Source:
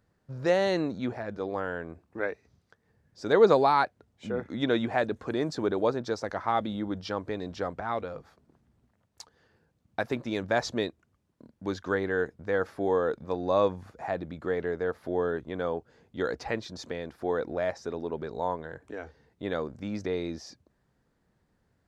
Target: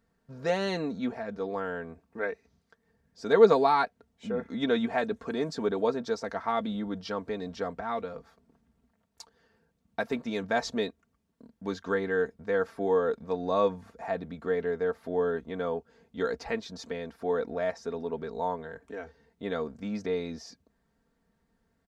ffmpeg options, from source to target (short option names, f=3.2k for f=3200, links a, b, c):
-af "aecho=1:1:4.4:0.65,volume=-2.5dB"